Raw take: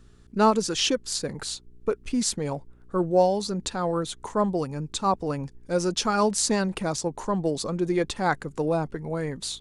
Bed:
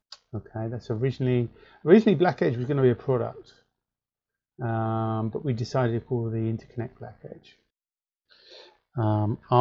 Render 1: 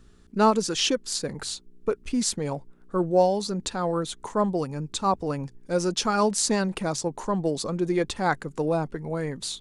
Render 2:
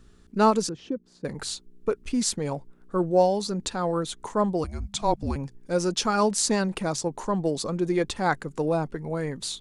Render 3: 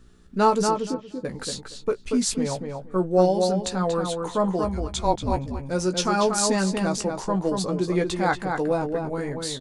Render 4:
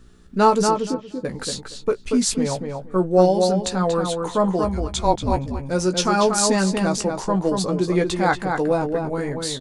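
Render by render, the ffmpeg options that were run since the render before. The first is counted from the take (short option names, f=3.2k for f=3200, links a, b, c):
-af "bandreject=f=60:t=h:w=4,bandreject=f=120:t=h:w=4"
-filter_complex "[0:a]asettb=1/sr,asplit=3[a][b][c];[a]atrim=end=0.694[d];[b]atrim=start=0.69:end=1.25,asetpts=PTS-STARTPTS,afade=t=in:d=0.004:c=qsin,afade=t=out:st=0.556:d=0.004:c=qsin,bandpass=f=170:t=q:w=0.89[e];[c]atrim=start=1.246[f];[d][e]acrossfade=d=0.004:c1=hsin:c2=qsin[g];[g][f]acrossfade=d=0.004:c1=qsin:c2=hsin,asettb=1/sr,asplit=3[h][i][j];[h]atrim=end=4.644[k];[i]atrim=start=4.64:end=5.36,asetpts=PTS-STARTPTS,afade=t=in:d=0.004:c=qsin,afade=t=out:st=0.716:d=0.004:c=qsin,afreqshift=-210[l];[j]atrim=start=5.356[m];[k][l]acrossfade=d=0.004:c1=hsin:c2=qsin[n];[n][m]acrossfade=d=0.004:c1=qsin:c2=hsin"
-filter_complex "[0:a]asplit=2[a][b];[b]adelay=16,volume=-7dB[c];[a][c]amix=inputs=2:normalize=0,asplit=2[d][e];[e]adelay=235,lowpass=f=3.2k:p=1,volume=-4.5dB,asplit=2[f][g];[g]adelay=235,lowpass=f=3.2k:p=1,volume=0.18,asplit=2[h][i];[i]adelay=235,lowpass=f=3.2k:p=1,volume=0.18[j];[d][f][h][j]amix=inputs=4:normalize=0"
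-af "volume=3.5dB"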